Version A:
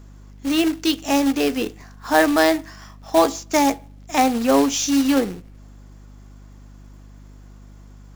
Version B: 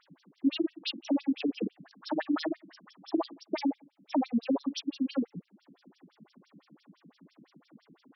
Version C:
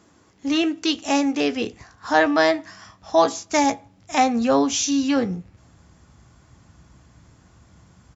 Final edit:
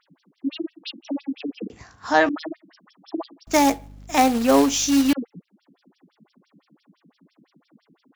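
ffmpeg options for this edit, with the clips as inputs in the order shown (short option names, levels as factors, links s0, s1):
-filter_complex "[1:a]asplit=3[s0][s1][s2];[s0]atrim=end=1.702[s3];[2:a]atrim=start=1.698:end=2.292[s4];[s1]atrim=start=2.288:end=3.472[s5];[0:a]atrim=start=3.468:end=5.132[s6];[s2]atrim=start=5.128[s7];[s3][s4]acrossfade=d=0.004:c1=hsin:c2=hsin[s8];[s8][s5]acrossfade=d=0.004:c1=hsin:c2=hsin[s9];[s9][s6]acrossfade=d=0.004:c1=hsin:c2=hsin[s10];[s10][s7]acrossfade=d=0.004:c1=hsin:c2=hsin"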